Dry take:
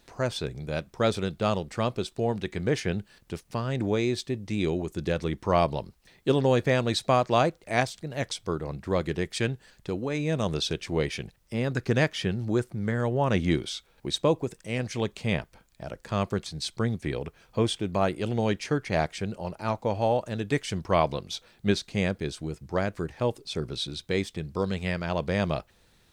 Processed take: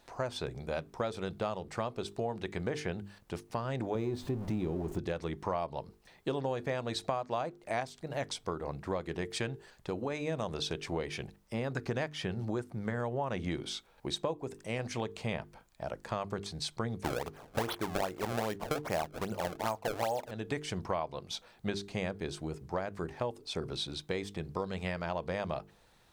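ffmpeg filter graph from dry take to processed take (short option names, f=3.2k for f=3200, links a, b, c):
-filter_complex "[0:a]asettb=1/sr,asplit=3[a][b][c];[a]atrim=end=3.954[d];[b]atrim=start=3.95:end=4.99,asetpts=PTS-STARTPTS,afade=t=in:d=0.004:c=qsin,afade=t=out:st=1.036:d=0.004:c=qsin,aeval=exprs='val(0)+0.5*0.0188*sgn(val(0))':c=same,tiltshelf=f=710:g=7.5[e];[c]atrim=start=4.986[f];[d][e]acrossfade=d=0.004:c1=hsin:c2=qsin[g];[g][f]acrossfade=d=0.004:c1=qsin:c2=hsin,asettb=1/sr,asplit=3[h][i][j];[h]atrim=end=17.034[k];[i]atrim=start=17.03:end=20.31,asetpts=PTS-STARTPTS,afade=t=in:d=0.004:c=qsin,afade=t=out:st=3.276:d=0.004:c=qsin,bass=f=250:g=-3,treble=f=4k:g=0,acrusher=samples=27:mix=1:aa=0.000001:lfo=1:lforange=43.2:lforate=2.5,acontrast=81[l];[j]atrim=start=20.306[m];[k][l]acrossfade=d=0.004:c1=hsin:c2=qsin[n];[n][m]acrossfade=d=0.004:c1=qsin:c2=hsin,equalizer=f=850:t=o:w=1.5:g=7.5,bandreject=f=50:t=h:w=6,bandreject=f=100:t=h:w=6,bandreject=f=150:t=h:w=6,bandreject=f=200:t=h:w=6,bandreject=f=250:t=h:w=6,bandreject=f=300:t=h:w=6,bandreject=f=350:t=h:w=6,bandreject=f=400:t=h:w=6,bandreject=f=450:t=h:w=6,acompressor=threshold=-27dB:ratio=6,volume=-4dB"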